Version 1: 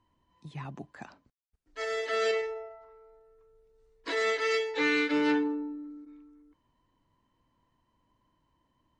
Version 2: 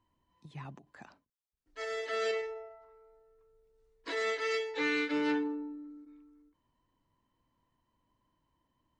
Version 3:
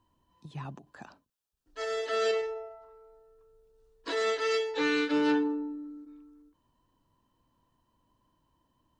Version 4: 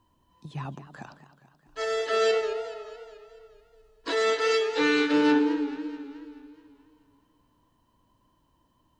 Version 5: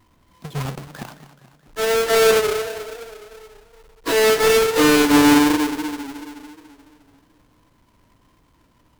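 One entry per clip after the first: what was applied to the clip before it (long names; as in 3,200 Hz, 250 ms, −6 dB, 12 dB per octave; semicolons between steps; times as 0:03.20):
every ending faded ahead of time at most 200 dB per second; level −4.5 dB
parametric band 2,100 Hz −10 dB 0.3 octaves; level +5 dB
feedback echo with a swinging delay time 215 ms, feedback 56%, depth 137 cents, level −13.5 dB; level +4.5 dB
each half-wave held at its own peak; pitch vibrato 1.1 Hz 29 cents; level +4.5 dB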